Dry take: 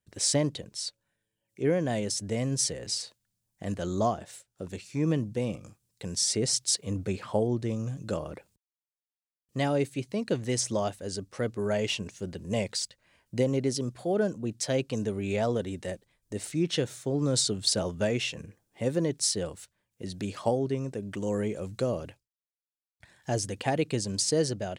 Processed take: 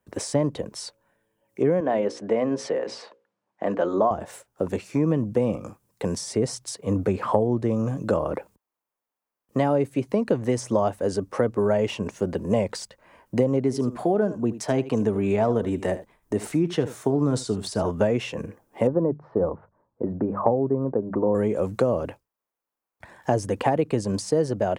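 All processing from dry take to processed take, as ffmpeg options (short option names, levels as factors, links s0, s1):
-filter_complex "[0:a]asettb=1/sr,asplit=3[s0][s1][s2];[s0]atrim=end=1.804[s3];[s1]atrim=start=1.8:end=4.11,asetpts=PTS-STARTPTS,afade=t=in:d=0.004:c=qsin,afade=t=out:st=2.306:d=0.004:c=qsin,highpass=280,lowpass=3200,bandreject=f=60:t=h:w=6,bandreject=f=120:t=h:w=6,bandreject=f=180:t=h:w=6,bandreject=f=240:t=h:w=6,bandreject=f=300:t=h:w=6,bandreject=f=360:t=h:w=6,bandreject=f=420:t=h:w=6,bandreject=f=480:t=h:w=6,bandreject=f=540:t=h:w=6[s4];[s2]atrim=start=4.106[s5];[s3][s4]acrossfade=d=0.004:c1=hsin:c2=qsin[s6];[s6][s5]acrossfade=d=0.004:c1=qsin:c2=hsin,asettb=1/sr,asplit=3[s7][s8][s9];[s7]atrim=end=13.624[s10];[s8]atrim=start=13.62:end=17.9,asetpts=PTS-STARTPTS,afade=t=in:d=0.004:c=qsin,afade=t=out:st=4.276:d=0.004:c=qsin,bandreject=f=530:w=6.3,aecho=1:1:76:0.158,atrim=end_sample=188748[s11];[s9]atrim=start=17.896[s12];[s10][s11]acrossfade=d=0.004:c1=hsin:c2=qsin[s13];[s13][s12]acrossfade=d=0.004:c1=qsin:c2=hsin,asettb=1/sr,asplit=3[s14][s15][s16];[s14]atrim=end=18.874[s17];[s15]atrim=start=18.87:end=21.35,asetpts=PTS-STARTPTS,afade=t=in:d=0.004:c=qsin,afade=t=out:st=2.476:d=0.004:c=qsin,lowpass=f=1200:w=0.5412,lowpass=f=1200:w=1.3066,bandreject=f=50:t=h:w=6,bandreject=f=100:t=h:w=6,bandreject=f=150:t=h:w=6,bandreject=f=200:t=h:w=6[s18];[s16]atrim=start=21.346[s19];[s17][s18]acrossfade=d=0.004:c1=hsin:c2=qsin[s20];[s20][s19]acrossfade=d=0.004:c1=qsin:c2=hsin,acrossover=split=140[s21][s22];[s22]acompressor=threshold=0.02:ratio=6[s23];[s21][s23]amix=inputs=2:normalize=0,equalizer=f=125:t=o:w=1:g=-3,equalizer=f=250:t=o:w=1:g=5,equalizer=f=500:t=o:w=1:g=6,equalizer=f=1000:t=o:w=1:g=10,equalizer=f=4000:t=o:w=1:g=-7,equalizer=f=8000:t=o:w=1:g=-5,volume=2.37"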